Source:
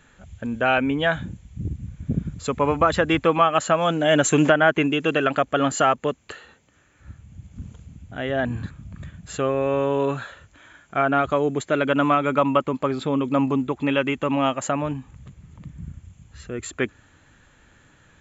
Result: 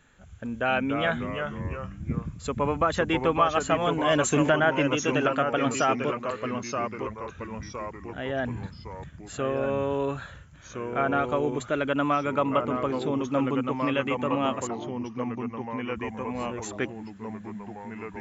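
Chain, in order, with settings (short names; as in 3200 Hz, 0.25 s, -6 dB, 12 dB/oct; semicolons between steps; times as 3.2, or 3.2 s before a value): 14.67–15.96 auto-wah 770–3000 Hz, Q 5.8, down, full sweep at -21 dBFS; echoes that change speed 0.215 s, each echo -2 st, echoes 3, each echo -6 dB; gain -5.5 dB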